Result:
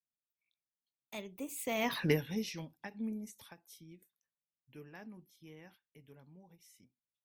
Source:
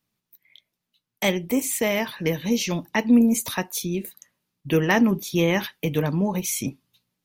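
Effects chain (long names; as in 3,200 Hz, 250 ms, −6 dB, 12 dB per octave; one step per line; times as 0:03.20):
source passing by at 0:02.00, 27 m/s, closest 1.9 metres
every ending faded ahead of time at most 300 dB per second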